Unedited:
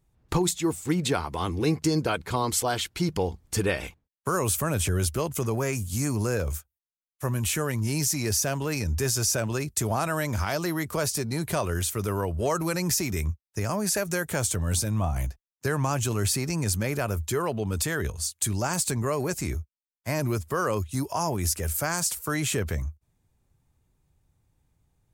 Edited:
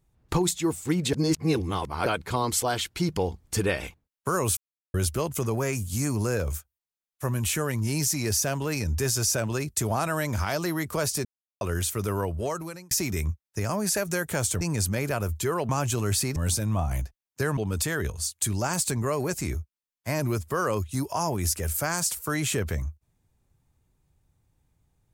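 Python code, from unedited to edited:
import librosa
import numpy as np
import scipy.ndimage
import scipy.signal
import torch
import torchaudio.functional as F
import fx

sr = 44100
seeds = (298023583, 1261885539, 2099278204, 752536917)

y = fx.edit(x, sr, fx.reverse_span(start_s=1.13, length_s=0.93),
    fx.silence(start_s=4.57, length_s=0.37),
    fx.silence(start_s=11.25, length_s=0.36),
    fx.fade_out_span(start_s=12.24, length_s=0.67),
    fx.swap(start_s=14.61, length_s=1.21, other_s=16.49, other_length_s=1.08), tone=tone)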